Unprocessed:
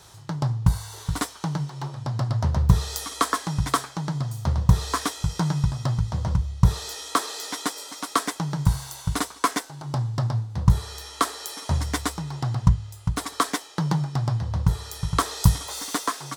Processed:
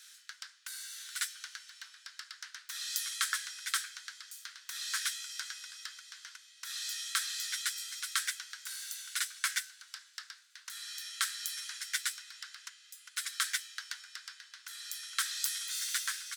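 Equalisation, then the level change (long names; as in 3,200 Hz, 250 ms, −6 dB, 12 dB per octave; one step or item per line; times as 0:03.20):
Chebyshev high-pass filter 1,500 Hz, order 5
−2.0 dB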